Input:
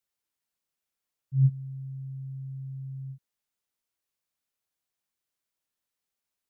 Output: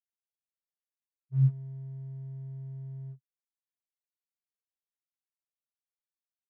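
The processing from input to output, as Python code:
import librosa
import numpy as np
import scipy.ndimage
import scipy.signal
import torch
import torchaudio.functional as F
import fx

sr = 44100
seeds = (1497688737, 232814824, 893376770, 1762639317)

p1 = fx.spec_topn(x, sr, count=1)
p2 = np.sign(p1) * np.maximum(np.abs(p1) - 10.0 ** (-48.5 / 20.0), 0.0)
p3 = p1 + (p2 * librosa.db_to_amplitude(-4.0))
y = p3 * librosa.db_to_amplitude(-1.5)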